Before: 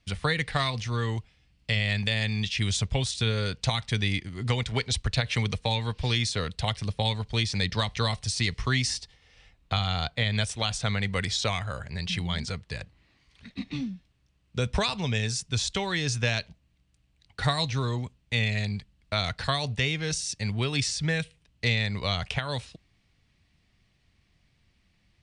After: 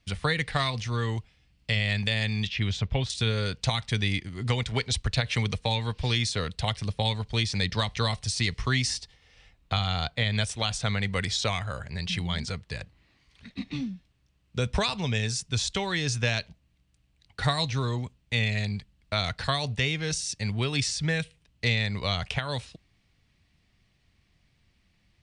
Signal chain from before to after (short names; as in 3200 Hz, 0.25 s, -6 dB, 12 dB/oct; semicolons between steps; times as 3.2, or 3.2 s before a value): 2.47–3.1 LPF 3400 Hz 12 dB/oct